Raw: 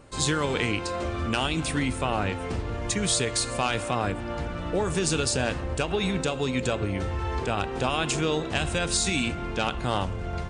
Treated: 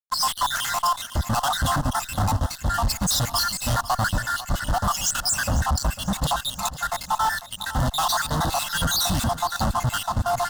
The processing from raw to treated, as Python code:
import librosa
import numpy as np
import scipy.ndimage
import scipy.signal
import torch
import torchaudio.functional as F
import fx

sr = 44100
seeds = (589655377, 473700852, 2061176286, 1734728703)

p1 = fx.spec_dropout(x, sr, seeds[0], share_pct=75)
p2 = scipy.signal.sosfilt(scipy.signal.butter(2, 5000.0, 'lowpass', fs=sr, output='sos'), p1)
p3 = fx.low_shelf(p2, sr, hz=200.0, db=10.5)
p4 = fx.over_compress(p3, sr, threshold_db=-33.0, ratio=-1.0)
p5 = p3 + (p4 * librosa.db_to_amplitude(0.5))
p6 = fx.fuzz(p5, sr, gain_db=38.0, gate_db=-44.0)
p7 = fx.fixed_phaser(p6, sr, hz=980.0, stages=4)
p8 = p7 + fx.echo_feedback(p7, sr, ms=498, feedback_pct=53, wet_db=-15.0, dry=0)
y = p8 * librosa.db_to_amplitude(-4.5)